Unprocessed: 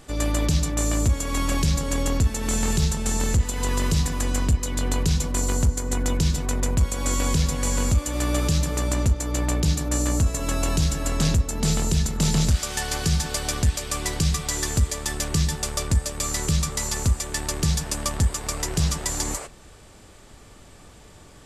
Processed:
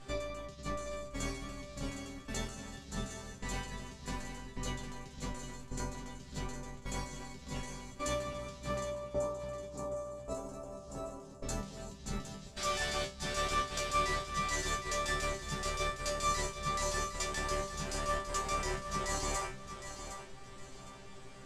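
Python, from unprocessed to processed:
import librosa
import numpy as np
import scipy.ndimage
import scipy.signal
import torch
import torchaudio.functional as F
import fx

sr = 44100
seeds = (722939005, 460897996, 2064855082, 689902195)

y = fx.graphic_eq(x, sr, hz=(250, 500, 1000, 2000, 4000, 8000), db=(3, 10, 9, -9, -7, 6), at=(8.81, 11.43))
y = fx.over_compress(y, sr, threshold_db=-27.0, ratio=-0.5)
y = fx.air_absorb(y, sr, metres=53.0)
y = fx.resonator_bank(y, sr, root=48, chord='fifth', decay_s=0.29)
y = fx.echo_feedback(y, sr, ms=761, feedback_pct=31, wet_db=-10.0)
y = y * 10.0 ** (4.5 / 20.0)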